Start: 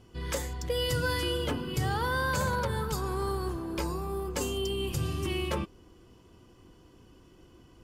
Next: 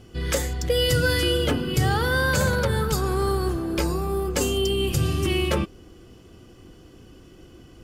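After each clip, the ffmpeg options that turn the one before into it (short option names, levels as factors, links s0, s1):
-af "equalizer=f=980:t=o:w=0.21:g=-11.5,volume=2.66"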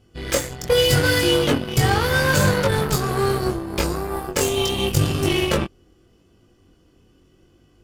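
-af "aeval=exprs='0.316*(cos(1*acos(clip(val(0)/0.316,-1,1)))-cos(1*PI/2))+0.0355*(cos(7*acos(clip(val(0)/0.316,-1,1)))-cos(7*PI/2))':c=same,flanger=delay=20:depth=2.7:speed=0.78,volume=2.37"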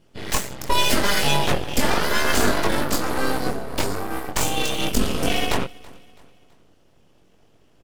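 -af "aeval=exprs='abs(val(0))':c=same,aecho=1:1:329|658|987:0.0708|0.0297|0.0125"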